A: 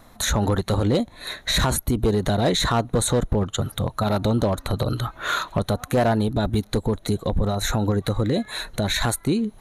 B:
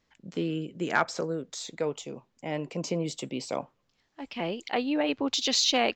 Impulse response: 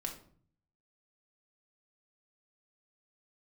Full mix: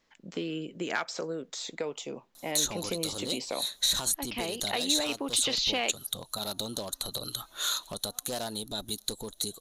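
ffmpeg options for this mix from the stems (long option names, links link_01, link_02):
-filter_complex "[0:a]aexciter=amount=10.3:drive=2.4:freq=3200,adelay=2350,volume=-14dB[link_01];[1:a]acrossover=split=4400[link_02][link_03];[link_03]acompressor=threshold=-41dB:ratio=4:attack=1:release=60[link_04];[link_02][link_04]amix=inputs=2:normalize=0,volume=3dB[link_05];[link_01][link_05]amix=inputs=2:normalize=0,equalizer=frequency=77:width=0.65:gain=-13,acrossover=split=2500|6500[link_06][link_07][link_08];[link_06]acompressor=threshold=-31dB:ratio=4[link_09];[link_07]acompressor=threshold=-27dB:ratio=4[link_10];[link_08]acompressor=threshold=-33dB:ratio=4[link_11];[link_09][link_10][link_11]amix=inputs=3:normalize=0,asoftclip=type=tanh:threshold=-12.5dB"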